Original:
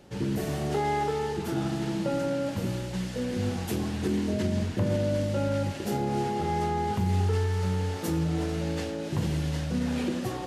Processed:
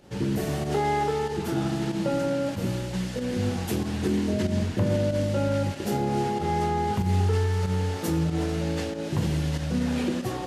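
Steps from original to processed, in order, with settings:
fake sidechain pumping 94 BPM, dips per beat 1, −8 dB, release 88 ms
level +2.5 dB

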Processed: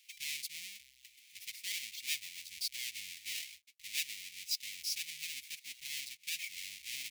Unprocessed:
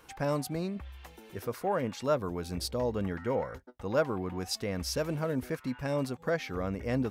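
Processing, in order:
each half-wave held at its own peak
elliptic high-pass filter 2,200 Hz, stop band 40 dB
level −3.5 dB

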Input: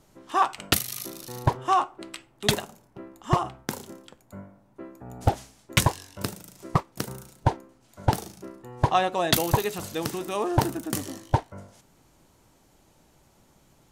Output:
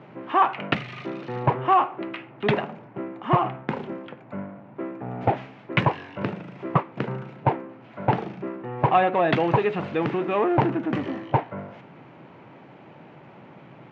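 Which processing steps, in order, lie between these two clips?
power curve on the samples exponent 0.7
elliptic band-pass filter 130–2,500 Hz, stop band 60 dB

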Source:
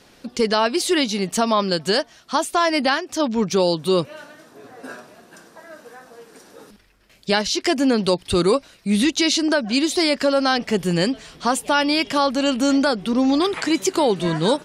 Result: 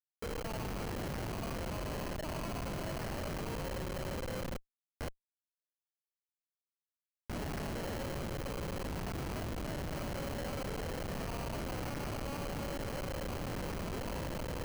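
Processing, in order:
reversed piece by piece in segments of 221 ms
bit-depth reduction 8 bits, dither none
brickwall limiter −13 dBFS, peak gain reduction 7.5 dB
flanger 0.45 Hz, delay 6.1 ms, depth 8.8 ms, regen −33%
elliptic high-pass filter 510 Hz, stop band 80 dB
four-comb reverb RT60 1.9 s, combs from 33 ms, DRR −1 dB
sample-rate reduction 3,600 Hz, jitter 0%
output level in coarse steps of 20 dB
comparator with hysteresis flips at −38.5 dBFS
level +3 dB

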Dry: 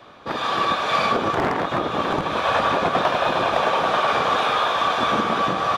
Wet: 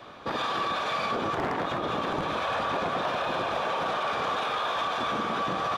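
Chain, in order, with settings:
brickwall limiter −21 dBFS, peak gain reduction 10.5 dB

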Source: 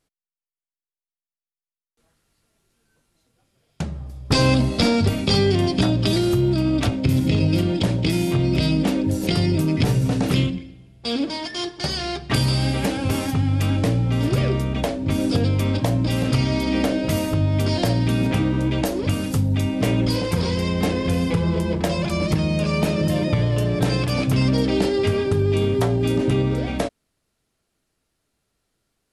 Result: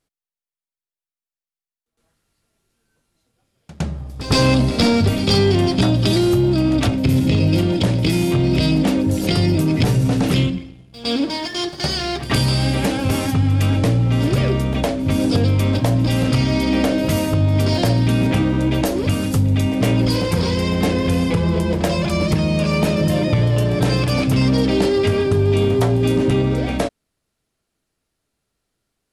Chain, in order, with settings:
echo ahead of the sound 111 ms −16 dB
leveller curve on the samples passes 1

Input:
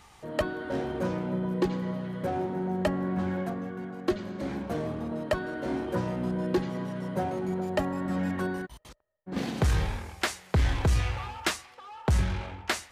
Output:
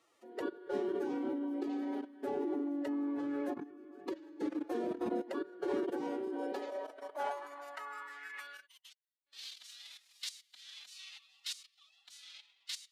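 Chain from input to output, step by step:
output level in coarse steps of 17 dB
high-pass filter sweep 250 Hz → 3,800 Hz, 0:05.80–0:09.23
phase-vocoder pitch shift with formants kept +7.5 semitones
level −4 dB

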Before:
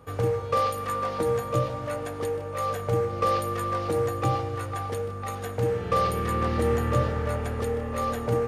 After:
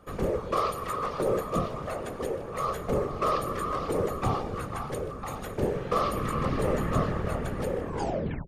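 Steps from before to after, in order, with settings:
turntable brake at the end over 0.64 s
random phases in short frames
level −2.5 dB

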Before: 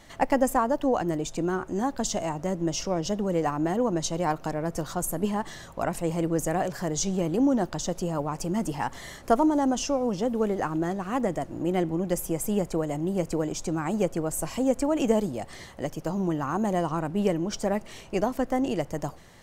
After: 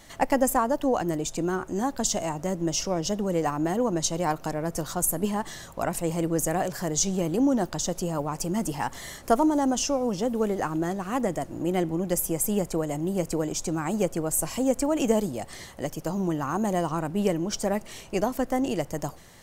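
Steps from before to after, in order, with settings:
high-shelf EQ 6,200 Hz +9 dB

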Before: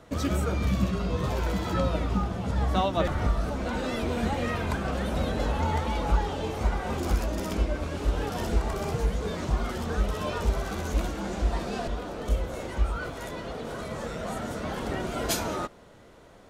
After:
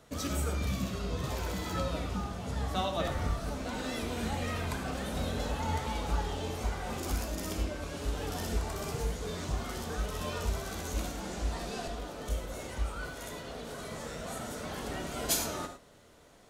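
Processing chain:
high-shelf EQ 3,700 Hz +10.5 dB
convolution reverb, pre-delay 3 ms, DRR 5 dB
level −8 dB

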